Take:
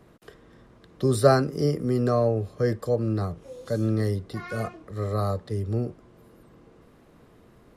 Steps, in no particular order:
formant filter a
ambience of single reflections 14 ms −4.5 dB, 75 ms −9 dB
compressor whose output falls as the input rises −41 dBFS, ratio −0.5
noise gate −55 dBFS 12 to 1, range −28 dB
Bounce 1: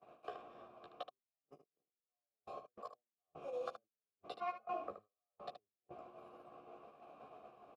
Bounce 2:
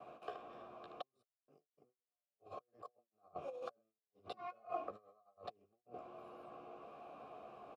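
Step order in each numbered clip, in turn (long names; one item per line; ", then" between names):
compressor whose output falls as the input rises, then formant filter, then noise gate, then ambience of single reflections
ambience of single reflections, then compressor whose output falls as the input rises, then noise gate, then formant filter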